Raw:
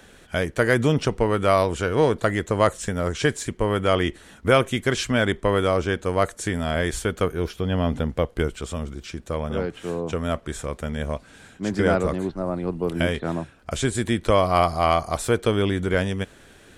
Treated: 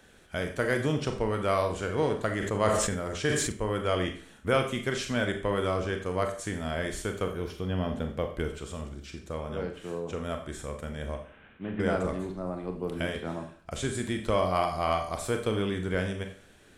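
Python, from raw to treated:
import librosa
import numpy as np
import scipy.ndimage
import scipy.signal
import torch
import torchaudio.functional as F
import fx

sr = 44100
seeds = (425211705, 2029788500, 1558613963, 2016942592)

y = fx.cvsd(x, sr, bps=16000, at=(11.15, 11.8))
y = fx.rev_schroeder(y, sr, rt60_s=0.47, comb_ms=29, drr_db=5.0)
y = fx.sustainer(y, sr, db_per_s=29.0, at=(2.32, 3.52))
y = F.gain(torch.from_numpy(y), -8.5).numpy()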